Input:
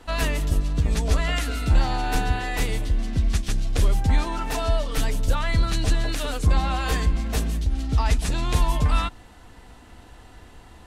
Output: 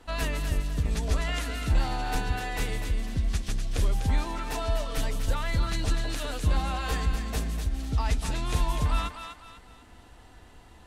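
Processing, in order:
feedback echo with a high-pass in the loop 248 ms, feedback 39%, high-pass 620 Hz, level −6.5 dB
level −5.5 dB

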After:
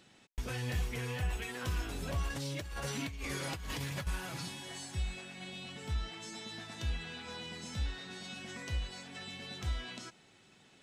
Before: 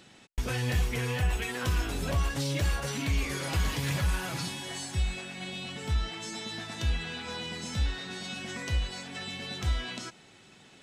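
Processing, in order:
0:02.30–0:04.07: compressor whose output falls as the input rises −32 dBFS, ratio −1
level −7 dB

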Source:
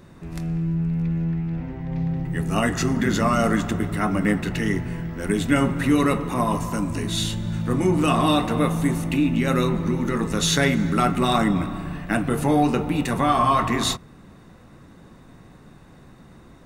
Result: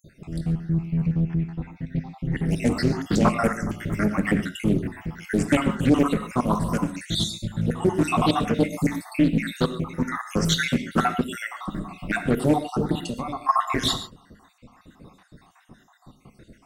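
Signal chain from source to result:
time-frequency cells dropped at random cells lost 66%
0:11.21–0:11.68: Butterworth high-pass 830 Hz 36 dB per octave
0:12.97–0:13.49: downward compressor 8 to 1, threshold −30 dBFS, peak gain reduction 12.5 dB
reverb whose tail is shaped and stops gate 160 ms flat, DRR 9 dB
highs frequency-modulated by the lows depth 0.35 ms
level +2 dB

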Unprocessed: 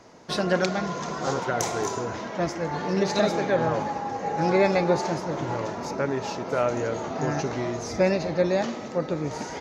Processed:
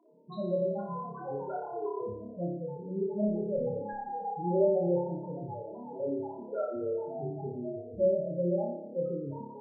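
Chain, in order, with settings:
0:02.07–0:03.96: lower of the sound and its delayed copy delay 0.38 ms
spectral peaks only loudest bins 4
flutter between parallel walls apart 4.9 metres, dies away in 0.72 s
level −7.5 dB

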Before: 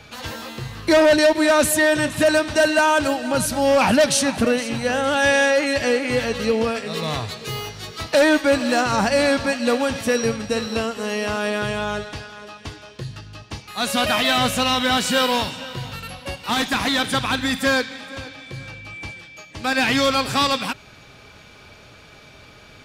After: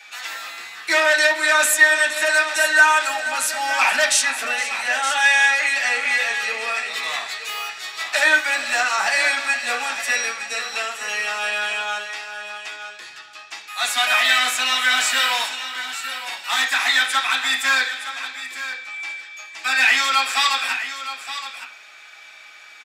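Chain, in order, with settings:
high-pass filter 1,400 Hz 12 dB per octave
single-tap delay 918 ms −11.5 dB
convolution reverb RT60 0.40 s, pre-delay 3 ms, DRR −6 dB

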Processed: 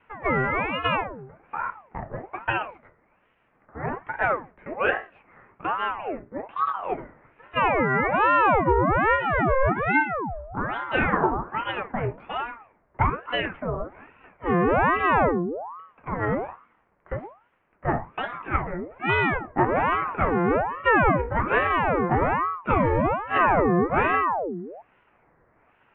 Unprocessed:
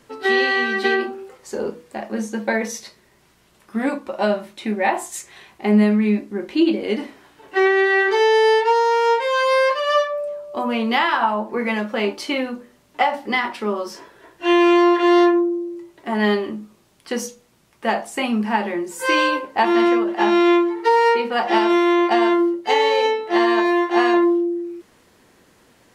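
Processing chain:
adaptive Wiener filter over 9 samples
0:23.38–0:23.94: spectral tilt −3.5 dB per octave
single-sideband voice off tune −260 Hz 380–2,000 Hz
ring modulator whose carrier an LFO sweeps 740 Hz, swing 65%, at 1.2 Hz

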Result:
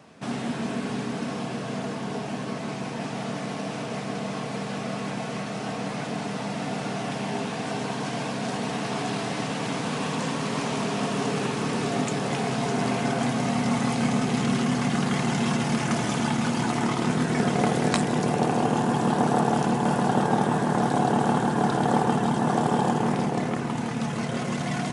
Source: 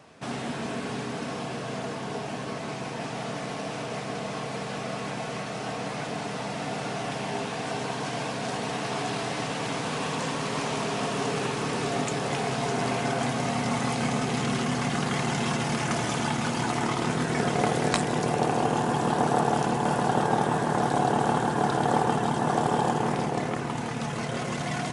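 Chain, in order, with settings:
high-pass filter 60 Hz
parametric band 210 Hz +6.5 dB 0.82 octaves

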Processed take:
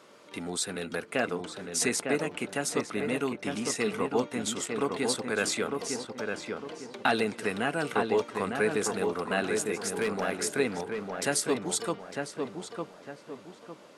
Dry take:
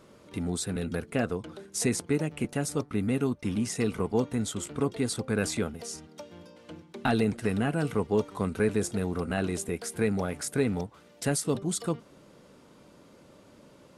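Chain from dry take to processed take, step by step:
meter weighting curve A
0:10.01–0:10.41: hard clipping −27.5 dBFS, distortion −25 dB
feedback echo with a low-pass in the loop 904 ms, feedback 38%, low-pass 2,100 Hz, level −4 dB
level +3.5 dB

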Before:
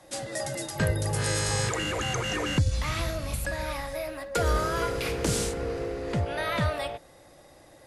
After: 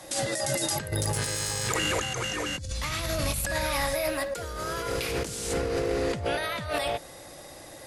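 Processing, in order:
high-shelf EQ 2,900 Hz +7 dB
0:00.91–0:02.01: tube saturation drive 15 dB, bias 0.75
low-shelf EQ 68 Hz −3 dB
compressor whose output falls as the input rises −33 dBFS, ratio −1
level +3 dB

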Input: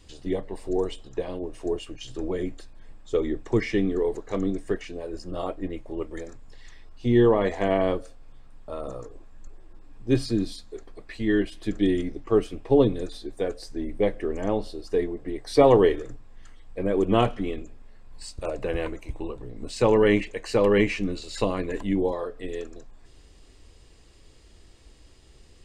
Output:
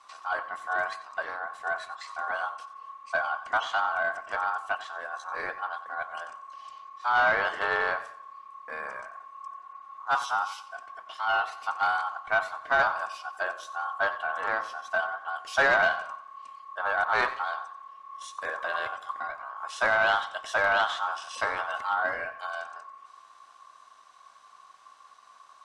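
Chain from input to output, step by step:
ring modulation 1,100 Hz
mid-hump overdrive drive 13 dB, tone 5,500 Hz, clips at −5 dBFS
feedback echo with a swinging delay time 91 ms, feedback 39%, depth 75 cents, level −15 dB
level −7 dB

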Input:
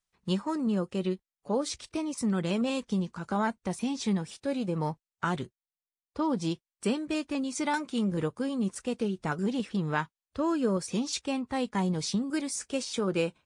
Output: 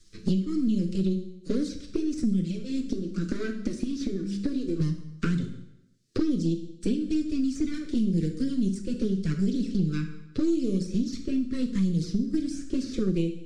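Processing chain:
gain on one half-wave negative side −12 dB
flat-topped bell 1,300 Hz −13.5 dB 3 octaves
hum removal 66.52 Hz, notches 3
0:02.41–0:04.80: downward compressor 5 to 1, threshold −38 dBFS, peak gain reduction 10.5 dB
flanger swept by the level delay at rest 9.1 ms, full sweep at −28 dBFS
Butterworth band-reject 840 Hz, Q 0.97
high-frequency loss of the air 100 metres
dense smooth reverb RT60 0.6 s, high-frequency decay 0.9×, DRR 5 dB
multiband upward and downward compressor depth 100%
level +8.5 dB

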